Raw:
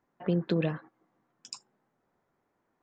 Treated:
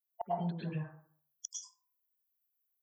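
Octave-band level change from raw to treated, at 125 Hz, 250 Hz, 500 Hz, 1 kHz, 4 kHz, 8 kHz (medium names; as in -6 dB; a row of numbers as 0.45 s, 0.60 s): -6.5 dB, -9.0 dB, -8.5 dB, +6.5 dB, -7.5 dB, +6.5 dB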